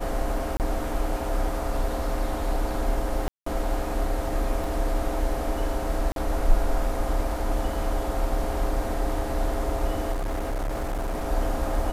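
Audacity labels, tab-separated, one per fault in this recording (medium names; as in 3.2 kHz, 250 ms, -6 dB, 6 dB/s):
0.570000	0.600000	dropout 28 ms
3.280000	3.460000	dropout 184 ms
4.640000	4.640000	dropout 2.5 ms
6.120000	6.160000	dropout 42 ms
10.120000	11.280000	clipped -24.5 dBFS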